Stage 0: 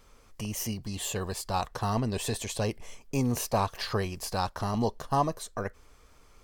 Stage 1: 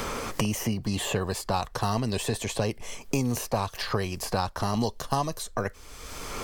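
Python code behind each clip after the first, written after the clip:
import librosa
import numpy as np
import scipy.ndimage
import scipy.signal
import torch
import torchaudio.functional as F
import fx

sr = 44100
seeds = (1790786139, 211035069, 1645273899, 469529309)

y = fx.band_squash(x, sr, depth_pct=100)
y = y * librosa.db_to_amplitude(1.5)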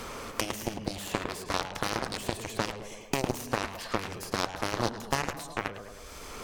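y = fx.echo_tape(x, sr, ms=106, feedback_pct=58, wet_db=-3.5, lp_hz=2900.0, drive_db=8.0, wow_cents=23)
y = fx.cheby_harmonics(y, sr, harmonics=(3, 7), levels_db=(-26, -14), full_scale_db=-9.5)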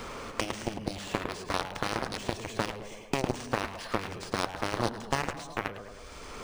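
y = np.interp(np.arange(len(x)), np.arange(len(x))[::3], x[::3])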